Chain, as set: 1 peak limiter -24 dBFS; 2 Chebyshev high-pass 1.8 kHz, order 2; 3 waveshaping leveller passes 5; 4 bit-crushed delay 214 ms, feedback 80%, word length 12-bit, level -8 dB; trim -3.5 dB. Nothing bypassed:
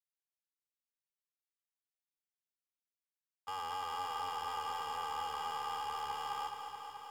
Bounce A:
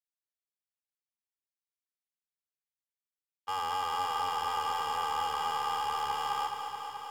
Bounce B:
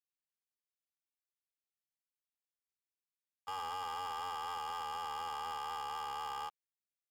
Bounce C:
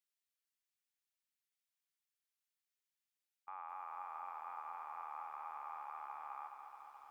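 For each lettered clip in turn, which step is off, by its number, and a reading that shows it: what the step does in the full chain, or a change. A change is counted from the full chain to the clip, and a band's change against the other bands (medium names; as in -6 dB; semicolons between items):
1, mean gain reduction 6.5 dB; 4, crest factor change -5.0 dB; 3, loudness change -8.5 LU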